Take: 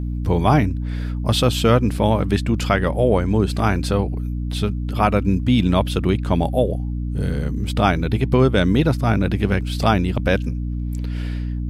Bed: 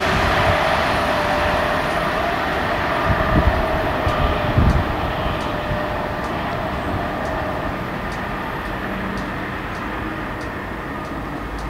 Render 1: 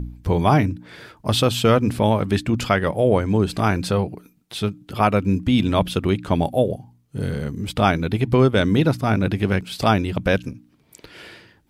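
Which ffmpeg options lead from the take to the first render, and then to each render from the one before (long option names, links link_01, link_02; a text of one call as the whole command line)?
ffmpeg -i in.wav -af "bandreject=frequency=60:width_type=h:width=4,bandreject=frequency=120:width_type=h:width=4,bandreject=frequency=180:width_type=h:width=4,bandreject=frequency=240:width_type=h:width=4,bandreject=frequency=300:width_type=h:width=4" out.wav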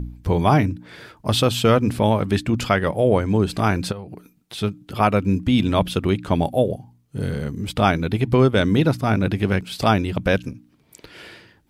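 ffmpeg -i in.wav -filter_complex "[0:a]asplit=3[link_01][link_02][link_03];[link_01]afade=type=out:start_time=3.91:duration=0.02[link_04];[link_02]acompressor=threshold=-30dB:ratio=8:attack=3.2:release=140:knee=1:detection=peak,afade=type=in:start_time=3.91:duration=0.02,afade=type=out:start_time=4.57:duration=0.02[link_05];[link_03]afade=type=in:start_time=4.57:duration=0.02[link_06];[link_04][link_05][link_06]amix=inputs=3:normalize=0" out.wav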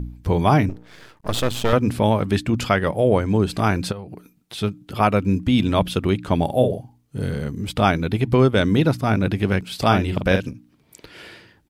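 ffmpeg -i in.wav -filter_complex "[0:a]asettb=1/sr,asplit=3[link_01][link_02][link_03];[link_01]atrim=end=0.694[link_04];[link_02]atrim=start=0.69:end=1.73,asetpts=PTS-STARTPTS,afade=type=in:duration=0.004:curve=qsin,afade=type=out:start_time=1.036:duration=0.004:curve=qsin,aeval=exprs='max(val(0),0)':channel_layout=same[link_05];[link_03]atrim=start=1.726[link_06];[link_04][link_05]acrossfade=duration=0.004:curve1=hsin:curve2=qsin[link_07];[link_07][link_06]acrossfade=duration=0.004:curve1=qsin:curve2=hsin,asplit=3[link_08][link_09][link_10];[link_08]afade=type=out:start_time=6.48:duration=0.02[link_11];[link_09]asplit=2[link_12][link_13];[link_13]adelay=47,volume=-6dB[link_14];[link_12][link_14]amix=inputs=2:normalize=0,afade=type=in:start_time=6.48:duration=0.02,afade=type=out:start_time=7.2:duration=0.02[link_15];[link_10]afade=type=in:start_time=7.2:duration=0.02[link_16];[link_11][link_15][link_16]amix=inputs=3:normalize=0,asplit=3[link_17][link_18][link_19];[link_17]afade=type=out:start_time=9.9:duration=0.02[link_20];[link_18]asplit=2[link_21][link_22];[link_22]adelay=43,volume=-6.5dB[link_23];[link_21][link_23]amix=inputs=2:normalize=0,afade=type=in:start_time=9.9:duration=0.02,afade=type=out:start_time=10.49:duration=0.02[link_24];[link_19]afade=type=in:start_time=10.49:duration=0.02[link_25];[link_20][link_24][link_25]amix=inputs=3:normalize=0" out.wav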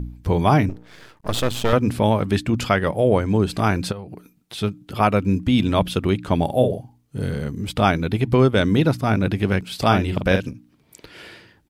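ffmpeg -i in.wav -af anull out.wav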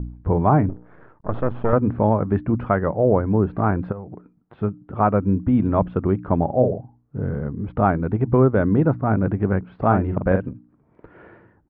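ffmpeg -i in.wav -af "lowpass=frequency=1400:width=0.5412,lowpass=frequency=1400:width=1.3066" out.wav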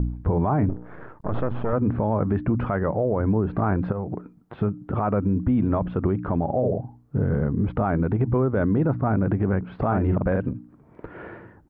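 ffmpeg -i in.wav -filter_complex "[0:a]asplit=2[link_01][link_02];[link_02]acompressor=threshold=-26dB:ratio=6,volume=2dB[link_03];[link_01][link_03]amix=inputs=2:normalize=0,alimiter=limit=-14dB:level=0:latency=1:release=45" out.wav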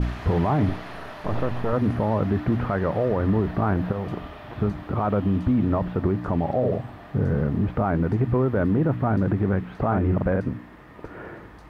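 ffmpeg -i in.wav -i bed.wav -filter_complex "[1:a]volume=-20.5dB[link_01];[0:a][link_01]amix=inputs=2:normalize=0" out.wav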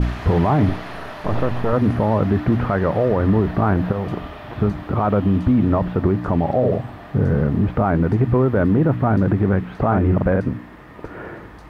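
ffmpeg -i in.wav -af "volume=5dB" out.wav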